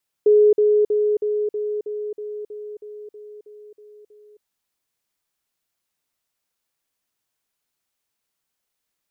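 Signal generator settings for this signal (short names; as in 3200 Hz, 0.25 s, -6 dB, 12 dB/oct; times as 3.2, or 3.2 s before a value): level ladder 420 Hz -10 dBFS, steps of -3 dB, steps 13, 0.27 s 0.05 s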